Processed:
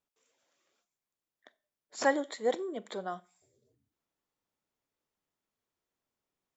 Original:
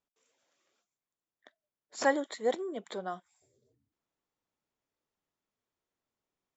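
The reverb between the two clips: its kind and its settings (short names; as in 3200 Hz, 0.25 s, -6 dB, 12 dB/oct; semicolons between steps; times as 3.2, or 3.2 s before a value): Schroeder reverb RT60 0.36 s, combs from 30 ms, DRR 19 dB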